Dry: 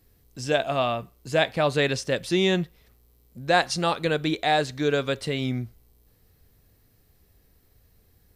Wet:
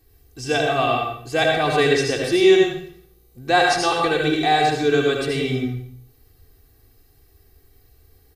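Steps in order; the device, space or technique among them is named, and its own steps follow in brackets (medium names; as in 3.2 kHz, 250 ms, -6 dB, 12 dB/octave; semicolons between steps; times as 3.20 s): microphone above a desk (comb 2.6 ms, depth 83%; reverberation RT60 0.65 s, pre-delay 68 ms, DRR 0 dB)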